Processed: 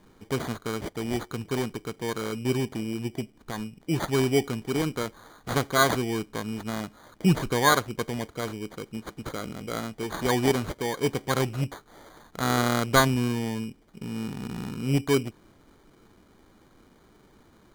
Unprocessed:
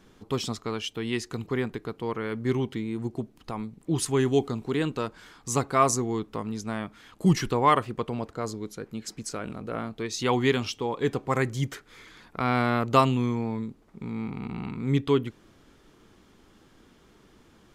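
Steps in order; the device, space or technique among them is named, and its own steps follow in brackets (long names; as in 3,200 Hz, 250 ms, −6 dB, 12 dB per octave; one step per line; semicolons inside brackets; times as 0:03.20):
crushed at another speed (tape speed factor 0.5×; decimation without filtering 33×; tape speed factor 2×)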